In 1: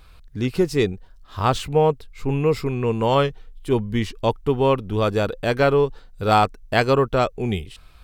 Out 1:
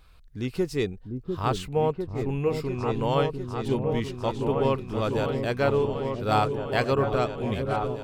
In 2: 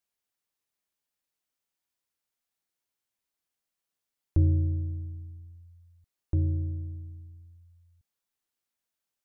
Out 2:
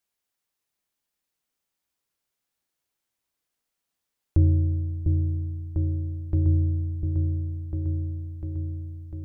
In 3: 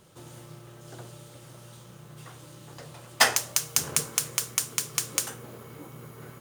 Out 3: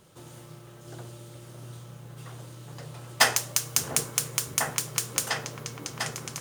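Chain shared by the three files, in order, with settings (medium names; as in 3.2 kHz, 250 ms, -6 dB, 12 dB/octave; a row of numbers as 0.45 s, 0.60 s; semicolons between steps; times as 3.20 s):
delay with an opening low-pass 699 ms, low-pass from 400 Hz, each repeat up 2 oct, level -3 dB; normalise loudness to -27 LUFS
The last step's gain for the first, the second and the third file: -7.0 dB, +3.5 dB, -0.5 dB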